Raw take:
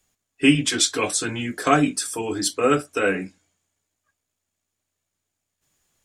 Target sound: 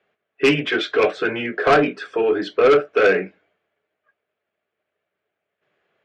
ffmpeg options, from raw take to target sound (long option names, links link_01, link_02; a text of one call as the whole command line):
ffmpeg -i in.wav -af "highpass=240,equalizer=frequency=270:width_type=q:width=4:gain=-9,equalizer=frequency=420:width_type=q:width=4:gain=8,equalizer=frequency=620:width_type=q:width=4:gain=6,equalizer=frequency=940:width_type=q:width=4:gain=-5,equalizer=frequency=1500:width_type=q:width=4:gain=3,lowpass=frequency=2700:width=0.5412,lowpass=frequency=2700:width=1.3066,asoftclip=type=tanh:threshold=-15.5dB,volume=6.5dB" out.wav